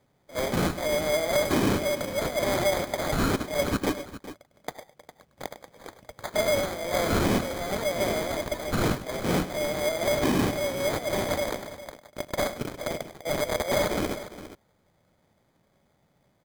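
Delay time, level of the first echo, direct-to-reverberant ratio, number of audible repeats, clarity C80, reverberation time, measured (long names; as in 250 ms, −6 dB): 102 ms, −13.5 dB, no reverb audible, 2, no reverb audible, no reverb audible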